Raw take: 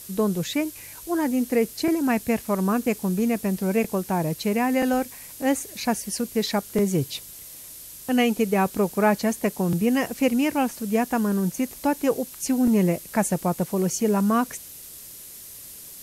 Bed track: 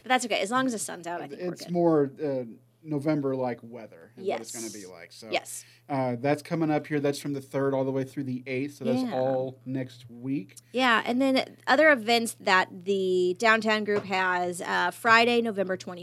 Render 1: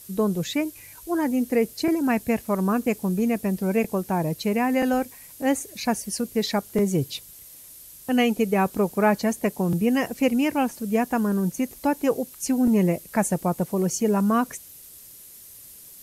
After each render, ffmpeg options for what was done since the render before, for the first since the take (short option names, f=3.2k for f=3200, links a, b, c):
-af "afftdn=nr=6:nf=-42"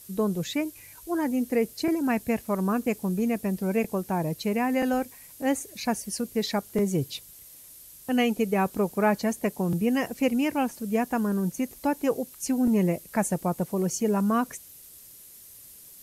-af "volume=-3dB"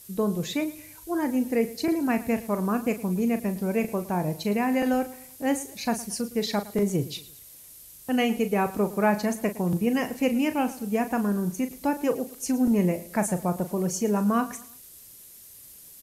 -filter_complex "[0:a]asplit=2[a][b];[b]adelay=39,volume=-10.5dB[c];[a][c]amix=inputs=2:normalize=0,aecho=1:1:111|222|333:0.126|0.0478|0.0182"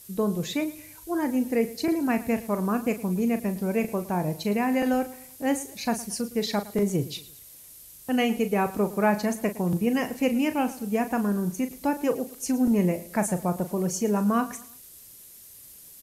-af anull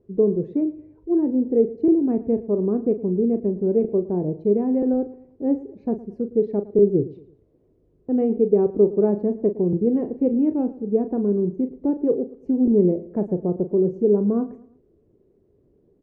-af "lowpass=f=400:t=q:w=4.1"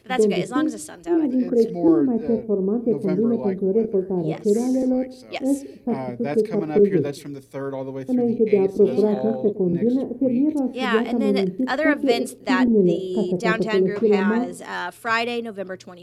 -filter_complex "[1:a]volume=-2.5dB[a];[0:a][a]amix=inputs=2:normalize=0"